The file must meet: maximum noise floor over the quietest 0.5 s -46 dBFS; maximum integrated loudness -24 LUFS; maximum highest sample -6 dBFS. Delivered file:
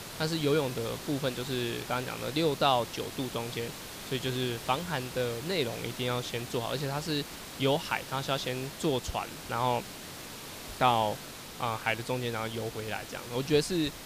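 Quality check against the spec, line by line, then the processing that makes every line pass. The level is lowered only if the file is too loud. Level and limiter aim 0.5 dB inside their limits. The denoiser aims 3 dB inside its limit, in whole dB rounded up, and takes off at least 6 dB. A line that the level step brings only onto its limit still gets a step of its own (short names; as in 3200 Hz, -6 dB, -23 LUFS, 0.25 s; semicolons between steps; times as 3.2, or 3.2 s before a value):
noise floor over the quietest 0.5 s -43 dBFS: fail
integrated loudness -31.5 LUFS: OK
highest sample -11.0 dBFS: OK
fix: denoiser 6 dB, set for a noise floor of -43 dBFS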